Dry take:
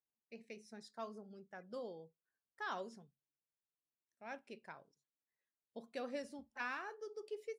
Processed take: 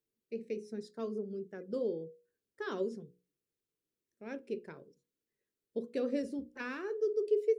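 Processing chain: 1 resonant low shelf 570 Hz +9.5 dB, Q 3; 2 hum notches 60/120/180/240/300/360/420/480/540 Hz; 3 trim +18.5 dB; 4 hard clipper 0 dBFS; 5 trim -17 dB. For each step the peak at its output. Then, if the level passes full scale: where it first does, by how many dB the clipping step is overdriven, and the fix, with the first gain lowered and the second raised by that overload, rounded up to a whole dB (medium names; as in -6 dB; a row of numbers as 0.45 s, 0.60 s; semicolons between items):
-20.0 dBFS, -21.5 dBFS, -3.0 dBFS, -3.0 dBFS, -20.0 dBFS; nothing clips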